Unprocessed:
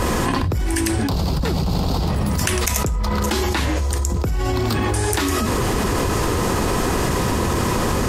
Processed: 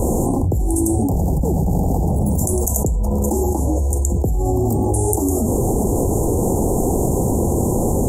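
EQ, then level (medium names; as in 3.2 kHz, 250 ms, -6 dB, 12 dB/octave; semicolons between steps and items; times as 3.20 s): Chebyshev band-stop 810–7000 Hz, order 4; +3.5 dB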